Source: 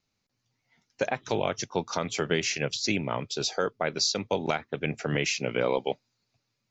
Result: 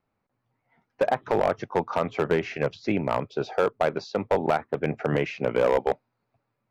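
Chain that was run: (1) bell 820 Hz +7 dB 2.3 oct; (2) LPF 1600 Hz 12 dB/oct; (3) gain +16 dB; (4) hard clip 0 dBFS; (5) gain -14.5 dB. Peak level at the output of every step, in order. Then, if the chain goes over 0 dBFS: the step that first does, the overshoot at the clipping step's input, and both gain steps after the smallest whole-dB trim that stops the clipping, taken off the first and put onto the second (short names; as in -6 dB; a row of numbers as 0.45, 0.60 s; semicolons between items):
-6.0, -7.5, +8.5, 0.0, -14.5 dBFS; step 3, 8.5 dB; step 3 +7 dB, step 5 -5.5 dB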